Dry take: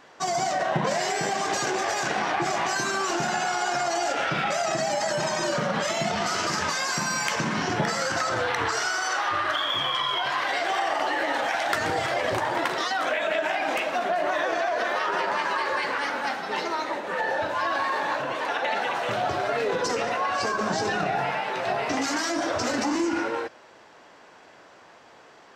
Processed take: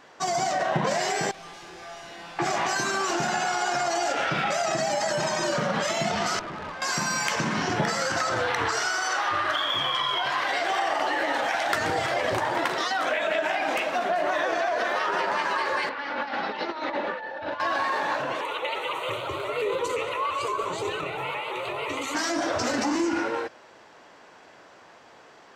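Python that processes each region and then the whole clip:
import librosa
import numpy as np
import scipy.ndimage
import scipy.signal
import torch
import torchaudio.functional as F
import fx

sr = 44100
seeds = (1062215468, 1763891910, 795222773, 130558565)

y = fx.chain(x, sr, fx.clip_1bit(),
    fx.lowpass(hz=5100.0, slope=12),
    fx.comb_fb(f0_hz=170.0, decay_s=1.0, harmonics='all', damping=0.0, mix_pct=90), at=(1.31, 2.39))
y = fx.chain(y, sr, fx.lowpass(hz=1300.0, slope=12),
    fx.tube_stage(drive_db=32.0, bias=0.55), at=(6.39, 6.82))
y = fx.chain(y, sr, fx.lowpass(hz=4500.0, slope=24),
    fx.over_compress(threshold_db=-31.0, ratio=-0.5),
    fx.comb(ms=3.5, depth=0.35), at=(15.89, 17.6))
y = fx.chain(y, sr, fx.high_shelf(hz=3800.0, db=5.5),
    fx.fixed_phaser(hz=1100.0, stages=8),
    fx.vibrato_shape(shape='saw_up', rate_hz=5.8, depth_cents=100.0), at=(18.41, 22.15))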